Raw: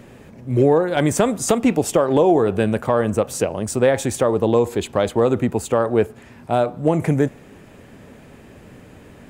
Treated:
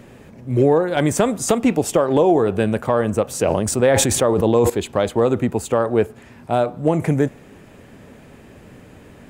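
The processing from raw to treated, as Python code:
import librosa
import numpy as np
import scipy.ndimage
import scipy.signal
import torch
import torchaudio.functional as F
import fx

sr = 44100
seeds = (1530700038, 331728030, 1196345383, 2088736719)

y = fx.sustainer(x, sr, db_per_s=26.0, at=(3.34, 4.7))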